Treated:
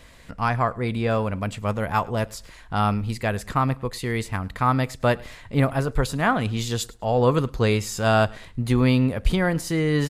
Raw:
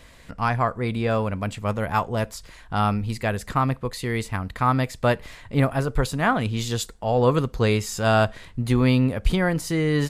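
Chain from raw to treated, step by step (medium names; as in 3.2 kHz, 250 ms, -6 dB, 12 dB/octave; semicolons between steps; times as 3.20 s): feedback delay 105 ms, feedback 25%, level -24 dB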